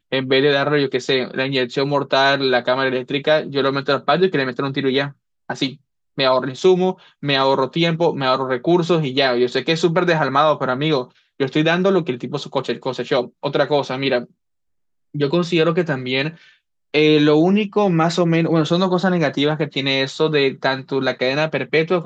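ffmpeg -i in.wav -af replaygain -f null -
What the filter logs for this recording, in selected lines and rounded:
track_gain = -1.8 dB
track_peak = 0.536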